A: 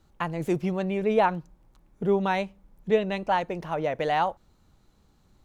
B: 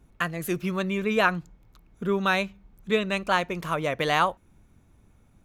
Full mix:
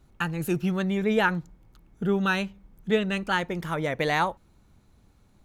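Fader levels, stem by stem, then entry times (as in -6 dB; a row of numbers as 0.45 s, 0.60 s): -2.0 dB, -3.0 dB; 0.00 s, 0.00 s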